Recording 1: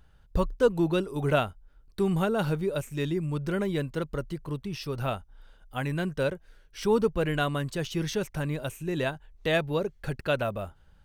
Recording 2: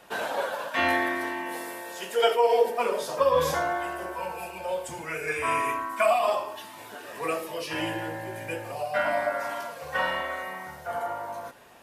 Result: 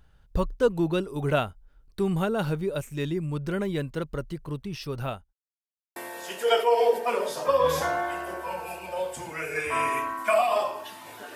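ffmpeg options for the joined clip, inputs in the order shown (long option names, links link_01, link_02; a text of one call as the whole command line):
ffmpeg -i cue0.wav -i cue1.wav -filter_complex "[0:a]apad=whole_dur=11.35,atrim=end=11.35,asplit=2[link_01][link_02];[link_01]atrim=end=5.33,asetpts=PTS-STARTPTS,afade=type=out:start_time=4.91:duration=0.42:curve=qsin[link_03];[link_02]atrim=start=5.33:end=5.96,asetpts=PTS-STARTPTS,volume=0[link_04];[1:a]atrim=start=1.68:end=7.07,asetpts=PTS-STARTPTS,afade=type=in:duration=0.004:curve=hsin[link_05];[link_03][link_04][link_05]concat=n=3:v=0:a=1" out.wav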